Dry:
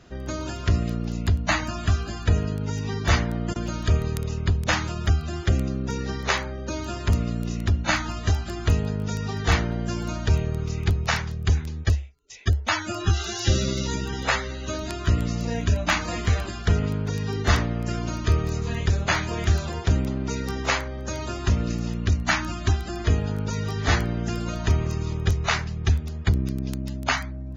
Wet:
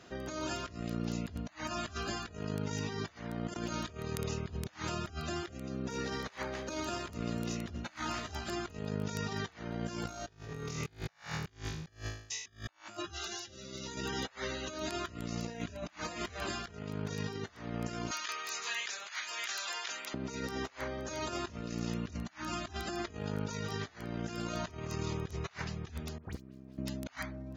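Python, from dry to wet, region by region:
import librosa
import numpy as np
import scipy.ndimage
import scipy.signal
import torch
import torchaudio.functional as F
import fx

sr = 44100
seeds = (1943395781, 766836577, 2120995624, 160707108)

y = fx.chain(x, sr, fx.halfwave_gain(db=-3.0),
    fx.echo_single(ms=249, db=-21.5), at=(5.9, 8.49))
y = fx.chain(y, sr, fx.transient(attack_db=6, sustain_db=-10),
    fx.room_flutter(wall_m=3.2, rt60_s=0.56), at=(10.03, 12.97))
y = fx.chain(y, sr, fx.highpass(hz=1500.0, slope=12),
    fx.band_squash(depth_pct=70), at=(18.11, 20.14))
y = fx.chain(y, sr, fx.median_filter(points=15),
    fx.level_steps(step_db=22),
    fx.dispersion(late='highs', ms=62.0, hz=2100.0), at=(26.18, 26.78))
y = fx.highpass(y, sr, hz=310.0, slope=6)
y = fx.over_compress(y, sr, threshold_db=-35.0, ratio=-0.5)
y = y * 10.0 ** (-5.0 / 20.0)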